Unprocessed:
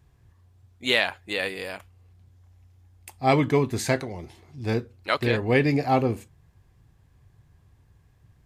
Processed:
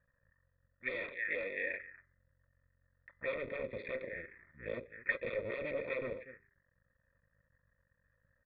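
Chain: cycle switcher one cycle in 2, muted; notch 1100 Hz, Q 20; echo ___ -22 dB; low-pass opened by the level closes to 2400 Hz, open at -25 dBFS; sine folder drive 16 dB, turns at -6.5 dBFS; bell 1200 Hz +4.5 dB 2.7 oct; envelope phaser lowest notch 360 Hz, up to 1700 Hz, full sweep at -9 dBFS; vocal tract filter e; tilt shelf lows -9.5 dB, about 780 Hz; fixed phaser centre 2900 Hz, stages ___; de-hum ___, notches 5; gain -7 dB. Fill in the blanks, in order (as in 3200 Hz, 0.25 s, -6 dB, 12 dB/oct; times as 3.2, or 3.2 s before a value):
0.24 s, 6, 402.8 Hz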